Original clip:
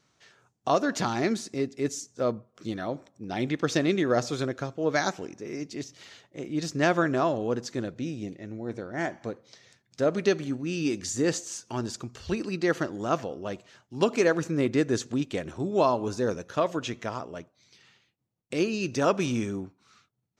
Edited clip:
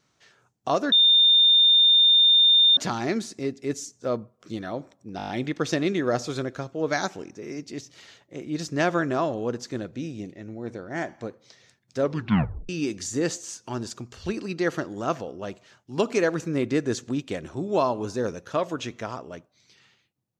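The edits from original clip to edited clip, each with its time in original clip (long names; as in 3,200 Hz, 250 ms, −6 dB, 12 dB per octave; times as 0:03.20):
0:00.92: insert tone 3,620 Hz −13.5 dBFS 1.85 s
0:03.32: stutter 0.02 s, 7 plays
0:10.03: tape stop 0.69 s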